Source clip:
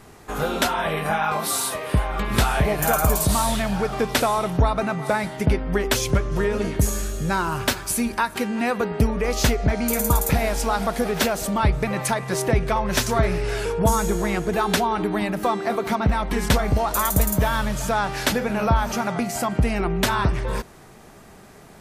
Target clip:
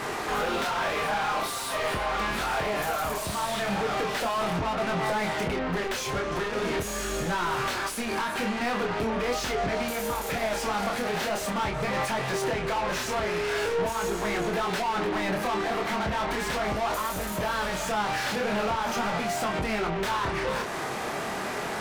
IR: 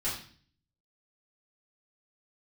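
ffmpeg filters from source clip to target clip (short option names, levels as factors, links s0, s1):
-filter_complex "[0:a]acompressor=threshold=0.0316:ratio=6,asplit=2[s0][s1];[s1]highpass=f=720:p=1,volume=50.1,asoftclip=type=tanh:threshold=0.126[s2];[s0][s2]amix=inputs=2:normalize=0,lowpass=f=2800:p=1,volume=0.501,flanger=delay=22.5:depth=7:speed=0.41"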